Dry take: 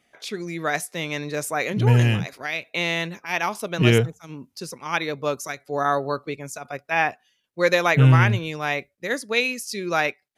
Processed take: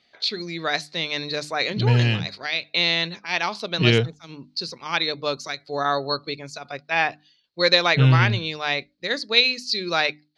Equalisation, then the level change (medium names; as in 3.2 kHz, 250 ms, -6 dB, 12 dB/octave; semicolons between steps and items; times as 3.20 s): resonant low-pass 4.3 kHz, resonance Q 10; hum notches 50/100/150/200/250/300 Hz; -1.5 dB